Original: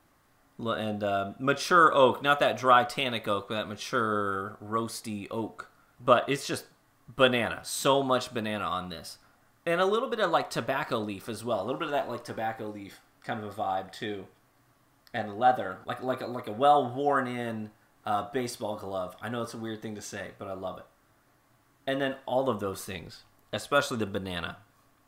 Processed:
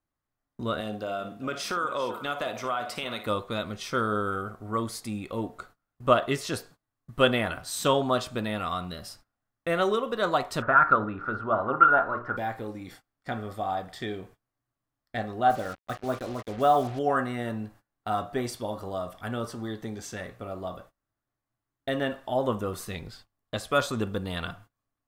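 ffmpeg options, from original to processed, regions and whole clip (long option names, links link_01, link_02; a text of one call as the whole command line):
ffmpeg -i in.wav -filter_complex "[0:a]asettb=1/sr,asplit=3[link_01][link_02][link_03];[link_01]atrim=end=0.804[link_04];[link_02]atrim=start=0.8:end=3.27,asetpts=PTS-STARTPTS,afade=type=in:duration=0.004:curve=qsin,afade=type=out:start_time=2.466:duration=0.004:curve=qsin,highpass=frequency=280:poles=1,acompressor=threshold=-30dB:ratio=2.5:attack=3.2:release=140:knee=1:detection=peak,aecho=1:1:56|395:0.251|0.168,atrim=end_sample=108927[link_05];[link_03]atrim=start=3.266[link_06];[link_04][link_05]acrossfade=duration=0.004:curve1=hsin:curve2=qsin[link_07];[link_07][link_06]acrossfade=duration=0.004:curve1=qsin:curve2=hsin,asettb=1/sr,asplit=3[link_08][link_09][link_10];[link_08]atrim=end=10.624[link_11];[link_09]atrim=start=10.62:end=12.37,asetpts=PTS-STARTPTS,afade=type=in:duration=0.004:curve=qsin,afade=type=out:start_time=1.746:duration=0.004:curve=qsin,lowpass=frequency=1400:width_type=q:width=12,bandreject=frequency=60:width_type=h:width=6,bandreject=frequency=120:width_type=h:width=6,bandreject=frequency=180:width_type=h:width=6,bandreject=frequency=240:width_type=h:width=6,bandreject=frequency=300:width_type=h:width=6,bandreject=frequency=360:width_type=h:width=6,bandreject=frequency=420:width_type=h:width=6,bandreject=frequency=480:width_type=h:width=6[link_12];[link_10]atrim=start=12.366[link_13];[link_11][link_12]acrossfade=duration=0.004:curve1=hsin:curve2=qsin[link_14];[link_14][link_13]acrossfade=duration=0.004:curve1=qsin:curve2=hsin,asettb=1/sr,asplit=3[link_15][link_16][link_17];[link_15]atrim=end=15.504[link_18];[link_16]atrim=start=15.5:end=16.99,asetpts=PTS-STARTPTS,afade=type=in:duration=0.004:curve=qsin,afade=type=out:start_time=1.486:duration=0.004:curve=qsin,agate=range=-8dB:threshold=-40dB:ratio=16:release=100:detection=peak,highshelf=frequency=4300:gain=-10,acrusher=bits=6:mix=0:aa=0.5[link_19];[link_17]atrim=start=16.986[link_20];[link_18][link_19]acrossfade=duration=0.004:curve1=hsin:curve2=qsin[link_21];[link_21][link_20]acrossfade=duration=0.004:curve1=qsin:curve2=hsin,lowshelf=frequency=130:gain=8,agate=range=-24dB:threshold=-50dB:ratio=16:detection=peak" out.wav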